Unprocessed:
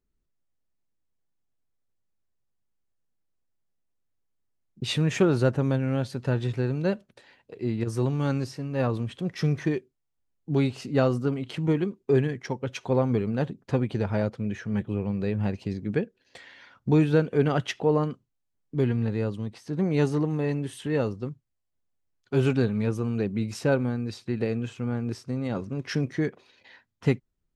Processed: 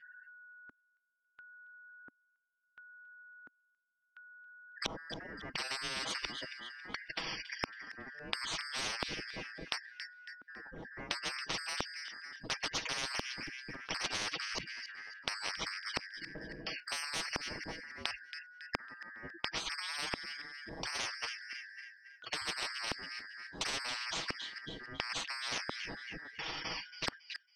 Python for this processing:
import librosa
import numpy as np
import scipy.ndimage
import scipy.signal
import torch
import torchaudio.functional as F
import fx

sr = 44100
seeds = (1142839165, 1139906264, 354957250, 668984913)

p1 = fx.band_shuffle(x, sr, order='3142')
p2 = fx.spec_gate(p1, sr, threshold_db=-25, keep='strong')
p3 = p2 + 0.83 * np.pad(p2, (int(6.2 * sr / 1000.0), 0))[:len(p2)]
p4 = fx.over_compress(p3, sr, threshold_db=-25.0, ratio=-1.0)
p5 = p3 + F.gain(torch.from_numpy(p4), -0.5).numpy()
p6 = 10.0 ** (-20.0 / 20.0) * np.tanh(p5 / 10.0 ** (-20.0 / 20.0))
p7 = fx.filter_lfo_lowpass(p6, sr, shape='square', hz=0.72, low_hz=270.0, high_hz=3200.0, q=2.6)
p8 = p7 + fx.echo_wet_highpass(p7, sr, ms=276, feedback_pct=33, hz=3200.0, wet_db=-15.0, dry=0)
p9 = fx.spectral_comp(p8, sr, ratio=10.0)
y = F.gain(torch.from_numpy(p9), 1.0).numpy()